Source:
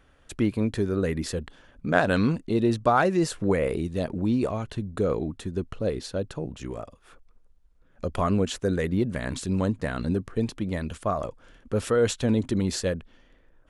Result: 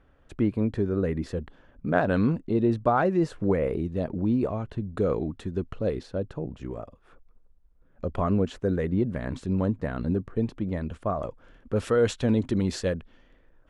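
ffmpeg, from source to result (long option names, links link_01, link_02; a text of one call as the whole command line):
ffmpeg -i in.wav -af "asetnsamples=nb_out_samples=441:pad=0,asendcmd='4.91 lowpass f 2600;6.03 lowpass f 1100;11.22 lowpass f 1900;11.76 lowpass f 3500',lowpass=frequency=1100:poles=1" out.wav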